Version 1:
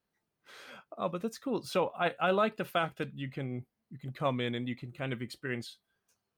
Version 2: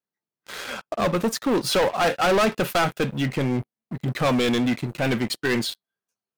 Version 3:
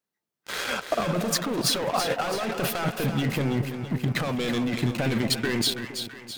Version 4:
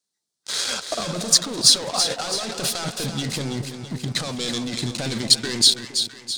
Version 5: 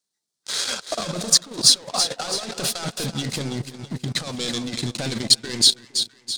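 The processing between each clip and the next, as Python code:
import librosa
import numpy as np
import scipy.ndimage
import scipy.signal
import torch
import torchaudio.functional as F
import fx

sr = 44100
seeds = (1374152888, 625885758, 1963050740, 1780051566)

y1 = scipy.signal.sosfilt(scipy.signal.butter(2, 140.0, 'highpass', fs=sr, output='sos'), x)
y1 = fx.leveller(y1, sr, passes=5)
y2 = fx.over_compress(y1, sr, threshold_db=-26.0, ratio=-1.0)
y2 = fx.echo_split(y2, sr, split_hz=760.0, low_ms=231, high_ms=330, feedback_pct=52, wet_db=-8.0)
y3 = fx.band_shelf(y2, sr, hz=5900.0, db=14.5, octaves=1.7)
y3 = F.gain(torch.from_numpy(y3), -2.5).numpy()
y4 = fx.transient(y3, sr, attack_db=0, sustain_db=-12)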